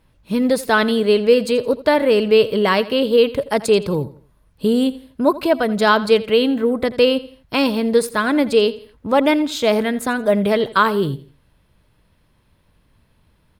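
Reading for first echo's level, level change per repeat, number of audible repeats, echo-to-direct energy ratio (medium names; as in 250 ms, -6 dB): -17.5 dB, -9.0 dB, 2, -17.0 dB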